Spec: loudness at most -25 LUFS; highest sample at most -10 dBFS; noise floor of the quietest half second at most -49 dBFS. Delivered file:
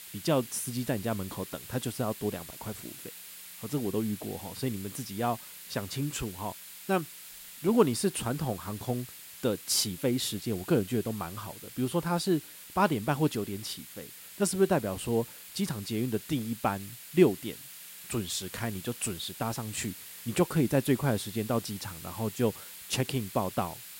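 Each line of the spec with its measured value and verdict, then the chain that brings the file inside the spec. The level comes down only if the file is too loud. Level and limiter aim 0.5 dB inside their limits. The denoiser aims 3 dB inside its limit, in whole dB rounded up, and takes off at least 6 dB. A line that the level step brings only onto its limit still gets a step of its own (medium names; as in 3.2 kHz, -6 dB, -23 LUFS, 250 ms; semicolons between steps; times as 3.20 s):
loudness -31.0 LUFS: pass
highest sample -9.0 dBFS: fail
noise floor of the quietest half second -47 dBFS: fail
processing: noise reduction 6 dB, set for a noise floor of -47 dBFS; peak limiter -10.5 dBFS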